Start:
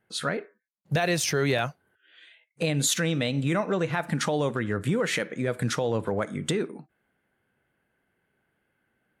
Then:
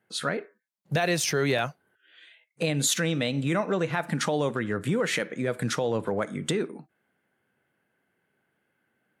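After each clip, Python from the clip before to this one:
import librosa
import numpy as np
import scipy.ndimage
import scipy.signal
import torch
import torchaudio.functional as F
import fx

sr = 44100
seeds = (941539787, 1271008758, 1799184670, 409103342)

y = scipy.signal.sosfilt(scipy.signal.butter(2, 120.0, 'highpass', fs=sr, output='sos'), x)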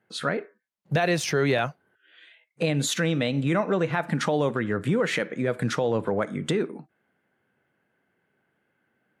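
y = fx.high_shelf(x, sr, hz=4900.0, db=-10.0)
y = F.gain(torch.from_numpy(y), 2.5).numpy()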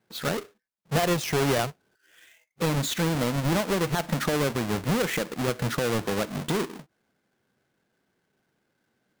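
y = fx.halfwave_hold(x, sr)
y = F.gain(torch.from_numpy(y), -5.5).numpy()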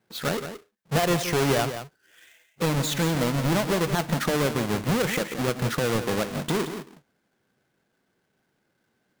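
y = x + 10.0 ** (-10.0 / 20.0) * np.pad(x, (int(173 * sr / 1000.0), 0))[:len(x)]
y = F.gain(torch.from_numpy(y), 1.0).numpy()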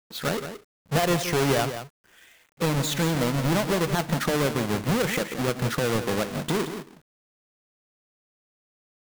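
y = fx.quant_dither(x, sr, seeds[0], bits=10, dither='none')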